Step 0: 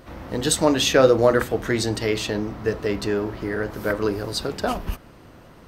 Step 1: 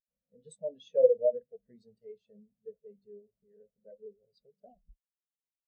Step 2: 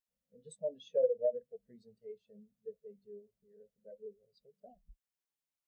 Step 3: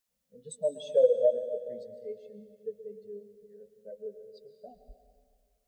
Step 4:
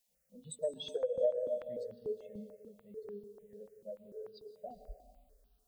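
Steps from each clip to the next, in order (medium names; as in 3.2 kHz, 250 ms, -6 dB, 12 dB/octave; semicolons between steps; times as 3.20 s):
static phaser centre 320 Hz, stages 6; spectral contrast expander 2.5:1; trim -6 dB
compression 2.5:1, threshold -29 dBFS, peak gain reduction 9.5 dB
tone controls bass -1 dB, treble +3 dB; plate-style reverb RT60 2.1 s, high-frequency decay 0.9×, pre-delay 105 ms, DRR 10 dB; trim +7.5 dB
compression 10:1, threshold -30 dBFS, peak gain reduction 14.5 dB; stepped phaser 6.8 Hz 340–2100 Hz; trim +4 dB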